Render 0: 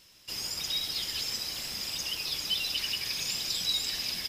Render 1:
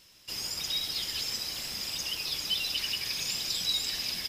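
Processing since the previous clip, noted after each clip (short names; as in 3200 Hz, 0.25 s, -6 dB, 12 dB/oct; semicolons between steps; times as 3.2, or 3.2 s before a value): nothing audible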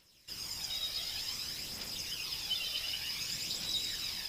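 on a send: split-band echo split 2900 Hz, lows 0.138 s, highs 0.106 s, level -4 dB; on the sum: phaser 0.55 Hz, delay 1.7 ms, feedback 41%; gain -8 dB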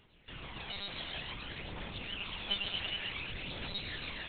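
air absorption 320 m; monotone LPC vocoder at 8 kHz 200 Hz; gain +8 dB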